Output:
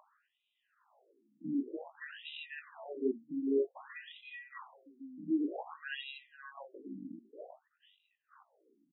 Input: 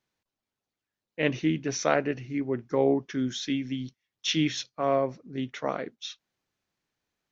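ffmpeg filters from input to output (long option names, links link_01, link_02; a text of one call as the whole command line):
ffmpeg -i in.wav -filter_complex "[0:a]acrusher=samples=20:mix=1:aa=0.000001,flanger=delay=17.5:depth=3.9:speed=1.1,alimiter=limit=-21.5dB:level=0:latency=1:release=18,aemphasis=mode=reproduction:type=75fm,asplit=2[link_01][link_02];[link_02]aecho=0:1:397|794:0.168|0.0302[link_03];[link_01][link_03]amix=inputs=2:normalize=0,acompressor=mode=upward:threshold=-44dB:ratio=2.5,acrossover=split=200 5700:gain=0.141 1 0.0708[link_04][link_05][link_06];[link_04][link_05][link_06]amix=inputs=3:normalize=0,atempo=0.82,afftfilt=real='re*between(b*sr/1024,220*pow(2900/220,0.5+0.5*sin(2*PI*0.53*pts/sr))/1.41,220*pow(2900/220,0.5+0.5*sin(2*PI*0.53*pts/sr))*1.41)':imag='im*between(b*sr/1024,220*pow(2900/220,0.5+0.5*sin(2*PI*0.53*pts/sr))/1.41,220*pow(2900/220,0.5+0.5*sin(2*PI*0.53*pts/sr))*1.41)':win_size=1024:overlap=0.75,volume=1.5dB" out.wav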